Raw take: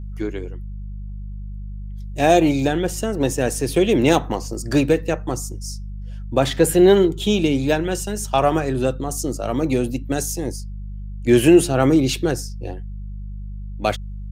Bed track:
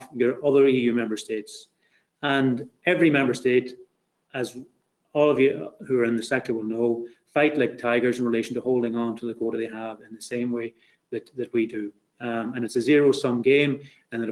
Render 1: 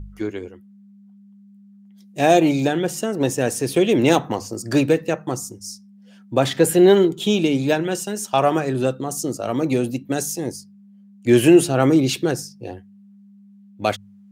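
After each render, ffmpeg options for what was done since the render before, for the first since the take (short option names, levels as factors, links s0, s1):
-af "bandreject=f=50:t=h:w=4,bandreject=f=100:t=h:w=4,bandreject=f=150:t=h:w=4"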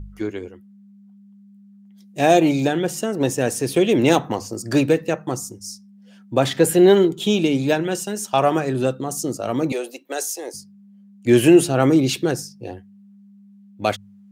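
-filter_complex "[0:a]asettb=1/sr,asplit=3[s0][s1][s2];[s0]atrim=end=9.724[s3];[s1]atrim=start=9.72:end=10.54,asetpts=PTS-STARTPTS,afade=t=in:d=0.004:c=qsin,afade=t=out:st=0.816:d=0.004:c=qsin,highpass=f=420:w=0.5412,highpass=f=420:w=1.3066[s4];[s2]atrim=start=10.536[s5];[s3][s4]acrossfade=d=0.004:c1=hsin:c2=qsin[s6];[s6][s5]acrossfade=d=0.004:c1=qsin:c2=hsin"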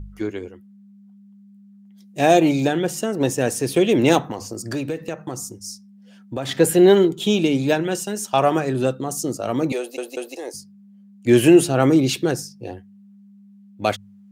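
-filter_complex "[0:a]asettb=1/sr,asplit=3[s0][s1][s2];[s0]atrim=end=4.264[s3];[s1]atrim=start=4.26:end=6.49,asetpts=PTS-STARTPTS,afade=t=in:d=0.004:c=qsin,afade=t=out:st=2.226:d=0.004:c=qsin,acompressor=threshold=0.0562:ratio=3:attack=3.2:release=140:knee=1:detection=peak[s4];[s2]atrim=start=6.486[s5];[s3][s4]acrossfade=d=0.004:c1=hsin:c2=qsin[s6];[s6][s5]acrossfade=d=0.004:c1=qsin:c2=hsin,asplit=4[s7][s8][s9][s10];[s7]atrim=end=9.982[s11];[s8]atrim=start=9.788:end=9.982[s12];[s9]atrim=start=9.788:end=9.982[s13];[s10]atrim=start=10.358[s14];[s11][s12]acrossfade=d=0.004:c1=hsin:c2=hsin[s15];[s15][s13]acrossfade=d=0.004:c1=hsin:c2=hsin[s16];[s16][s14]acrossfade=d=0.004:c1=hsin:c2=hsin"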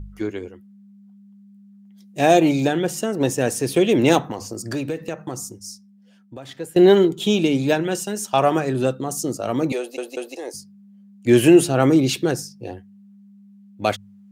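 -filter_complex "[0:a]asettb=1/sr,asplit=3[s0][s1][s2];[s0]atrim=end=9.754[s3];[s1]atrim=start=9.75:end=10.49,asetpts=PTS-STARTPTS,afade=t=in:d=0.004:c=qsin,afade=t=out:st=0.736:d=0.004:c=qsin,highshelf=f=11000:g=-7[s4];[s2]atrim=start=10.486[s5];[s3][s4]acrossfade=d=0.004:c1=hsin:c2=qsin[s6];[s6][s5]acrossfade=d=0.004:c1=qsin:c2=hsin,asplit=2[s7][s8];[s7]atrim=end=6.76,asetpts=PTS-STARTPTS,afade=t=out:st=5.34:d=1.42:silence=0.0794328[s9];[s8]atrim=start=6.76,asetpts=PTS-STARTPTS,afade=t=in:d=0.004:c=hsin:silence=0.0794328[s10];[s9][s10]concat=n=2:v=0:a=1"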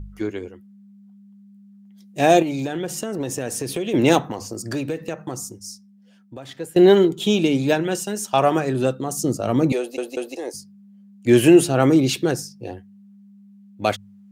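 -filter_complex "[0:a]asettb=1/sr,asplit=3[s0][s1][s2];[s0]atrim=end=2.424[s3];[s1]atrim=start=2.42:end=3.94,asetpts=PTS-STARTPTS,afade=t=in:d=0.004:c=qsin,afade=t=out:st=1.516:d=0.004:c=qsin,acompressor=threshold=0.0794:ratio=6:attack=3.2:release=140:knee=1:detection=peak[s4];[s2]atrim=start=3.936[s5];[s3][s4]acrossfade=d=0.004:c1=hsin:c2=qsin[s6];[s6][s5]acrossfade=d=0.004:c1=qsin:c2=hsin,asettb=1/sr,asplit=3[s7][s8][s9];[s7]atrim=end=9.184[s10];[s8]atrim=start=9.18:end=10.51,asetpts=PTS-STARTPTS,afade=t=in:d=0.004:c=qsin,afade=t=out:st=1.326:d=0.004:c=qsin,lowshelf=f=240:g=8.5[s11];[s9]atrim=start=10.506[s12];[s10][s11]acrossfade=d=0.004:c1=hsin:c2=qsin[s13];[s13][s12]acrossfade=d=0.004:c1=qsin:c2=hsin"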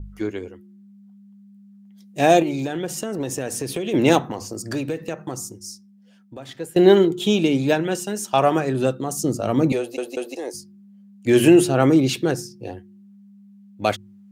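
-af "bandreject=f=119.1:t=h:w=4,bandreject=f=238.2:t=h:w=4,bandreject=f=357.3:t=h:w=4,adynamicequalizer=threshold=0.0178:dfrequency=3600:dqfactor=0.7:tfrequency=3600:tqfactor=0.7:attack=5:release=100:ratio=0.375:range=1.5:mode=cutabove:tftype=highshelf"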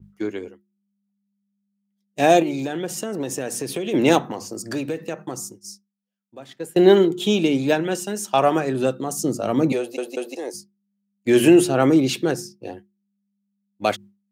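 -af "agate=range=0.0224:threshold=0.0224:ratio=3:detection=peak,highpass=150"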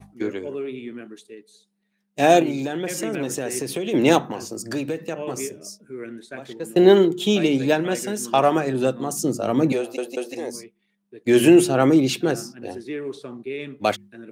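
-filter_complex "[1:a]volume=0.237[s0];[0:a][s0]amix=inputs=2:normalize=0"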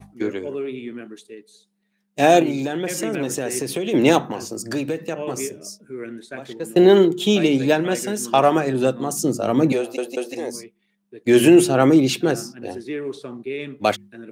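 -af "volume=1.26,alimiter=limit=0.708:level=0:latency=1"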